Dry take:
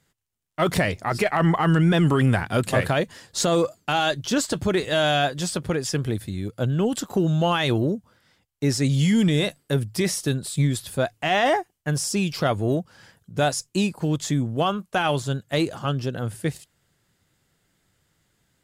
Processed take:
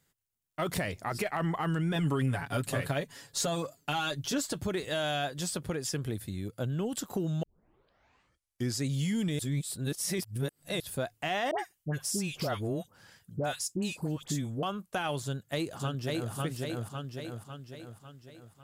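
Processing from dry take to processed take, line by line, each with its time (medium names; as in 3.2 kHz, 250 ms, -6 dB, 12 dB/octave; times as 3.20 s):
1.95–4.53 s: comb 7.1 ms, depth 66%
7.43 s: tape start 1.40 s
9.39–10.80 s: reverse
11.51–14.63 s: phase dispersion highs, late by 77 ms, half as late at 1.1 kHz
15.24–16.33 s: echo throw 550 ms, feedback 50%, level -1.5 dB
whole clip: treble shelf 11 kHz +11 dB; compression 2:1, threshold -25 dBFS; trim -6.5 dB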